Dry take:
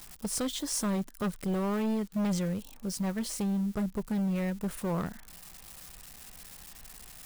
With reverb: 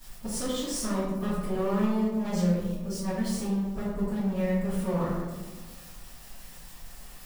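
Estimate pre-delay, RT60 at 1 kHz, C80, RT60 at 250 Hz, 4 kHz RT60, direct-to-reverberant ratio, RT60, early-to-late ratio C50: 3 ms, 1.2 s, 2.5 dB, 1.8 s, 0.65 s, -15.5 dB, 1.4 s, 0.0 dB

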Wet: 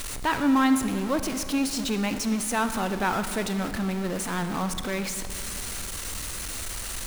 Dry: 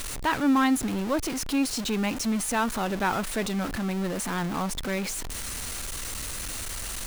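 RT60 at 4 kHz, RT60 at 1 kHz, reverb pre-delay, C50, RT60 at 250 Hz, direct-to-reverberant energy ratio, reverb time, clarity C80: 1.7 s, 2.3 s, 32 ms, 9.5 dB, 2.8 s, 9.0 dB, 2.4 s, 10.5 dB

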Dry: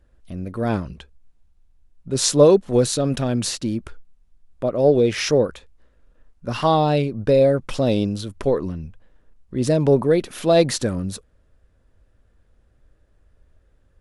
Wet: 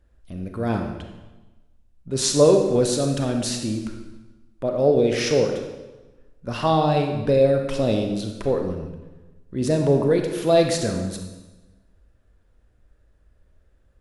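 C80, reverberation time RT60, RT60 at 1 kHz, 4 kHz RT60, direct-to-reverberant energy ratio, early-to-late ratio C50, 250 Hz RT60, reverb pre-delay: 7.0 dB, 1.1 s, 1.1 s, 1.0 s, 3.0 dB, 5.0 dB, 1.3 s, 29 ms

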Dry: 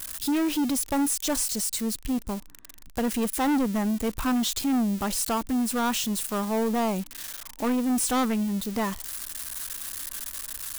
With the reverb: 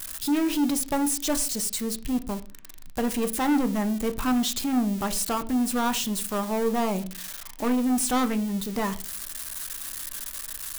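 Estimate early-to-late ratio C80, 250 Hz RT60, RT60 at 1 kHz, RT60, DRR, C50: 21.5 dB, 0.50 s, 0.35 s, 0.40 s, 8.5 dB, 17.5 dB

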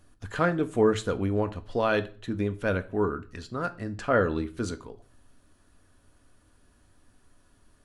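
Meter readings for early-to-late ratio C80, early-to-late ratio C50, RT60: 22.5 dB, 18.0 dB, 0.40 s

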